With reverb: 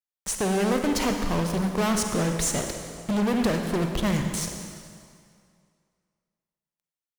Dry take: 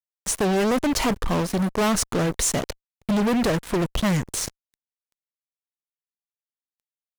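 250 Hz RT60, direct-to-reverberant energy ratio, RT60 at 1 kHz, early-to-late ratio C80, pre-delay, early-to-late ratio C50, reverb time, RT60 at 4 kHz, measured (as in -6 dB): 2.1 s, 4.0 dB, 2.3 s, 6.0 dB, 37 ms, 4.5 dB, 2.2 s, 1.9 s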